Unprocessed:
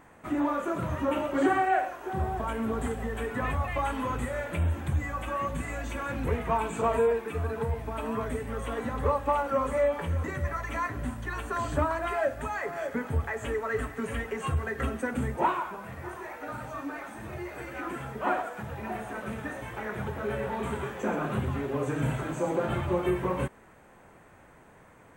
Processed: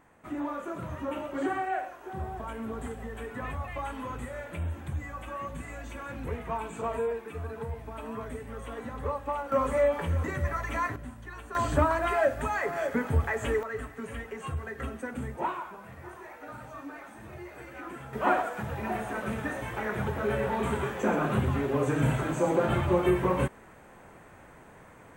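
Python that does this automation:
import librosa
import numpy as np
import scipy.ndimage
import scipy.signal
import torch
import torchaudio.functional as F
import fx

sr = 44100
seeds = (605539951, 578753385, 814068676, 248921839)

y = fx.gain(x, sr, db=fx.steps((0.0, -6.0), (9.52, 1.0), (10.96, -8.5), (11.55, 3.0), (13.63, -5.5), (18.13, 3.0)))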